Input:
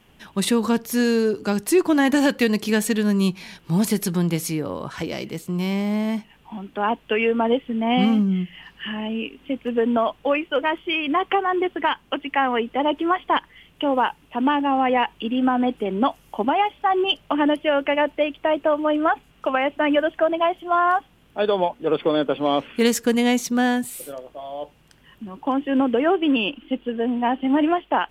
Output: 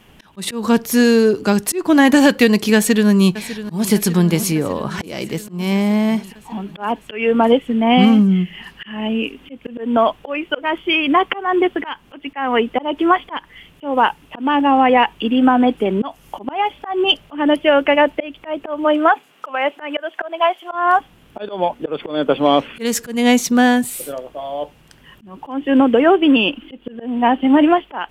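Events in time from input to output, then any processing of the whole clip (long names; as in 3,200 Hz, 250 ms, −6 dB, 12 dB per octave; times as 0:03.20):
0:02.75–0:03.92: delay throw 600 ms, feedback 70%, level −14 dB
0:18.84–0:20.71: high-pass filter 280 Hz → 720 Hz
whole clip: volume swells 236 ms; level +7 dB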